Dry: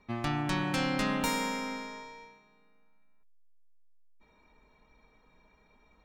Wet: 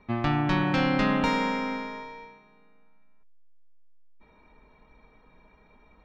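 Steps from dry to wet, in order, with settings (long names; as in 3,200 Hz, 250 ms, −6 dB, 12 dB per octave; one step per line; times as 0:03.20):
high-frequency loss of the air 210 metres
level +7 dB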